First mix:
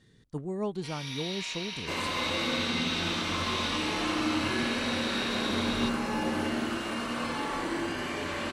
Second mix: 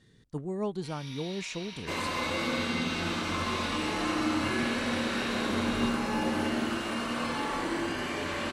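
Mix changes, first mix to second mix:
first sound -8.5 dB; reverb: on, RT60 2.9 s

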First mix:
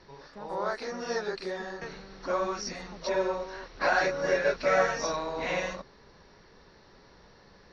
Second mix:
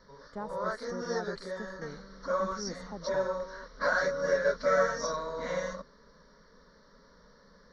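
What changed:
speech +6.5 dB; background: add fixed phaser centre 520 Hz, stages 8

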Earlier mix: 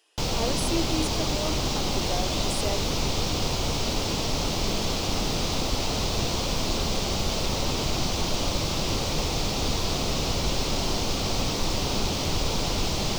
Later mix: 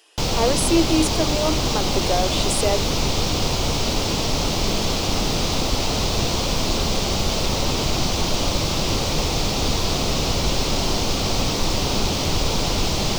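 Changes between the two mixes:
speech +10.5 dB; background +5.0 dB

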